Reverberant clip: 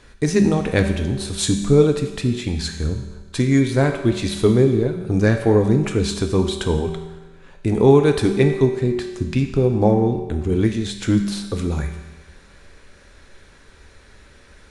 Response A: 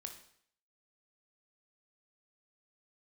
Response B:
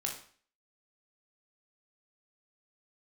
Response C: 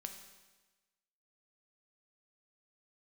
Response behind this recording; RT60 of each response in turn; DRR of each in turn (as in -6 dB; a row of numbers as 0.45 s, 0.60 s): C; 0.60 s, 0.45 s, 1.2 s; 4.5 dB, 0.0 dB, 4.5 dB